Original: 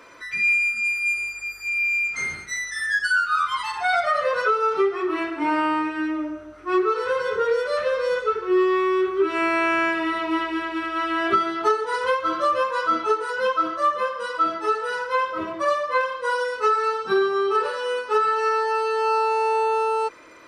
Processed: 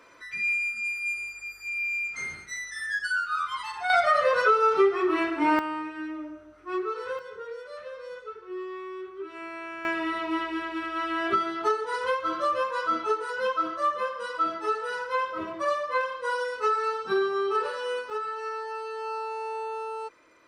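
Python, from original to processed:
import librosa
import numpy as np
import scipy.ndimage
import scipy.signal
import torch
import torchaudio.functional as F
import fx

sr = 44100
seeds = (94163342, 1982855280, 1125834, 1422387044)

y = fx.gain(x, sr, db=fx.steps((0.0, -7.0), (3.9, 0.0), (5.59, -9.5), (7.19, -17.0), (9.85, -5.0), (18.1, -12.0)))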